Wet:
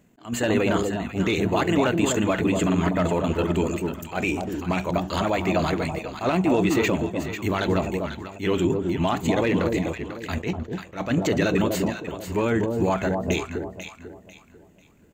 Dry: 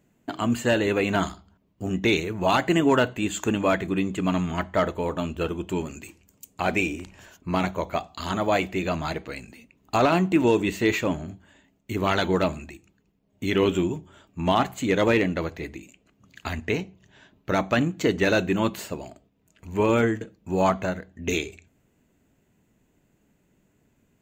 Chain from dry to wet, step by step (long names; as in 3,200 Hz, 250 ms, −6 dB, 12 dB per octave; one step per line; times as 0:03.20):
tempo change 1.6×
brickwall limiter −19.5 dBFS, peak gain reduction 9 dB
delay that swaps between a low-pass and a high-pass 247 ms, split 880 Hz, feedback 54%, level −3 dB
level that may rise only so fast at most 210 dB per second
level +6 dB